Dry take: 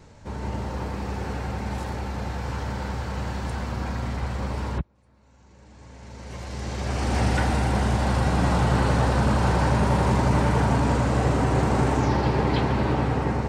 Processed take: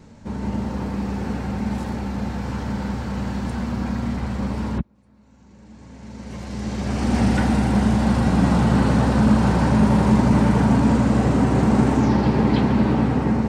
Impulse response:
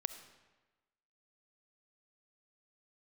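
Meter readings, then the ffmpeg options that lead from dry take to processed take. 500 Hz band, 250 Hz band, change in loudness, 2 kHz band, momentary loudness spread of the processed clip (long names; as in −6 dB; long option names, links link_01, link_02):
+1.5 dB, +9.0 dB, +4.5 dB, 0.0 dB, 11 LU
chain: -af "equalizer=frequency=220:width_type=o:width=0.76:gain=12"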